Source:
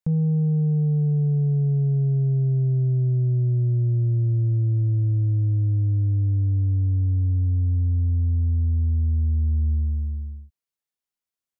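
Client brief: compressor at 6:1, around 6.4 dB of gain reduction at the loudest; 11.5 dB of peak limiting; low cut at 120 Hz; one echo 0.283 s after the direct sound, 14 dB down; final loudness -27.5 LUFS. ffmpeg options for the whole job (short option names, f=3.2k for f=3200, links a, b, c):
-af "highpass=120,acompressor=threshold=-27dB:ratio=6,alimiter=level_in=7dB:limit=-24dB:level=0:latency=1,volume=-7dB,aecho=1:1:283:0.2,volume=9dB"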